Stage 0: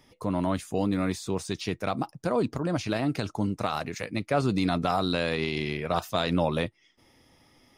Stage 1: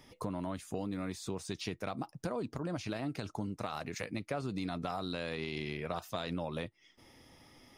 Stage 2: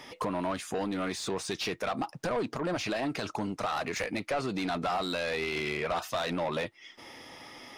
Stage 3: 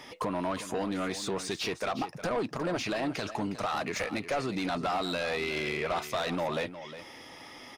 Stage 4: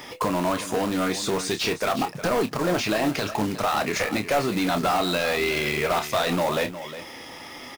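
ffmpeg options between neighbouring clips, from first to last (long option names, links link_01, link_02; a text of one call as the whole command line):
ffmpeg -i in.wav -af "acompressor=threshold=-37dB:ratio=4,volume=1dB" out.wav
ffmpeg -i in.wav -filter_complex "[0:a]asplit=2[link_01][link_02];[link_02]highpass=frequency=720:poles=1,volume=22dB,asoftclip=type=tanh:threshold=-21dB[link_03];[link_01][link_03]amix=inputs=2:normalize=0,lowpass=frequency=3500:poles=1,volume=-6dB" out.wav
ffmpeg -i in.wav -af "aecho=1:1:360:0.237" out.wav
ffmpeg -i in.wav -filter_complex "[0:a]acrusher=bits=3:mode=log:mix=0:aa=0.000001,asplit=2[link_01][link_02];[link_02]adelay=28,volume=-9dB[link_03];[link_01][link_03]amix=inputs=2:normalize=0,volume=7dB" out.wav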